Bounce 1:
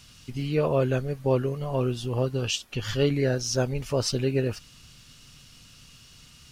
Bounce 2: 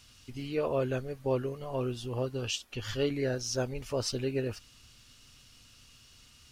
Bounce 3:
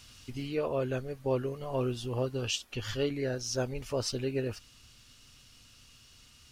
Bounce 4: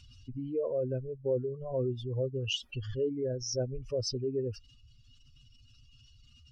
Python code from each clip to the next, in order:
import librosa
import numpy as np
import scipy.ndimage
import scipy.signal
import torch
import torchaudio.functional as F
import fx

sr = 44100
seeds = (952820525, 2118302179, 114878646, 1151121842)

y1 = fx.peak_eq(x, sr, hz=160.0, db=-13.0, octaves=0.33)
y1 = y1 * 10.0 ** (-5.5 / 20.0)
y2 = fx.rider(y1, sr, range_db=4, speed_s=0.5)
y3 = fx.spec_expand(y2, sr, power=2.4)